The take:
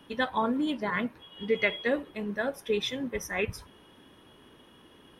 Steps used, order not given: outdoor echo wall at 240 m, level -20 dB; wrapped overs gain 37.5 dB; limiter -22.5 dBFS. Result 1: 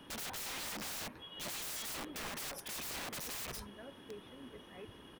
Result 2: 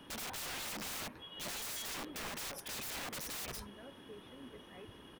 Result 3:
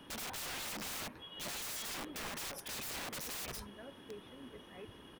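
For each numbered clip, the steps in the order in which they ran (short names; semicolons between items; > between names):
outdoor echo > wrapped overs > limiter; limiter > outdoor echo > wrapped overs; outdoor echo > limiter > wrapped overs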